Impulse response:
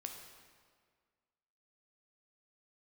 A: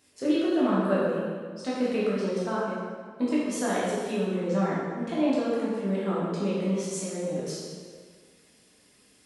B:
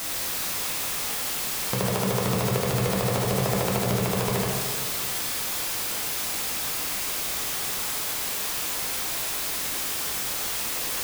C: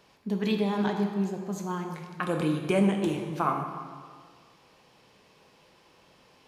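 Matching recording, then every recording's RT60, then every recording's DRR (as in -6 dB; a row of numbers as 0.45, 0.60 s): C; 1.8, 1.8, 1.8 s; -8.0, -3.0, 3.0 dB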